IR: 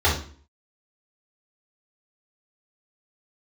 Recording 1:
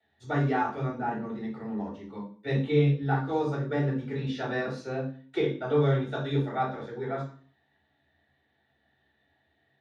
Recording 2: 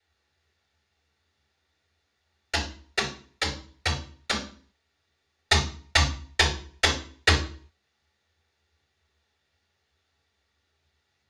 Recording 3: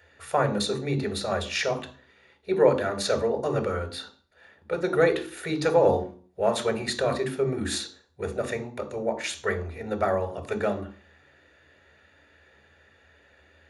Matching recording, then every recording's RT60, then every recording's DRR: 1; 0.45, 0.45, 0.45 s; -7.0, 0.0, 6.5 dB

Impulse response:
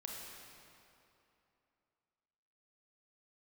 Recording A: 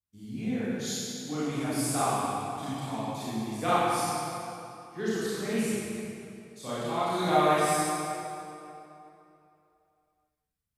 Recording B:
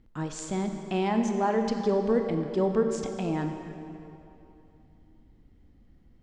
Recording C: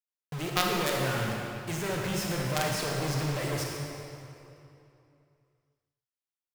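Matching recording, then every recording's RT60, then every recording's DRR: C; 2.9, 2.9, 2.9 s; -11.5, 4.5, -1.5 dB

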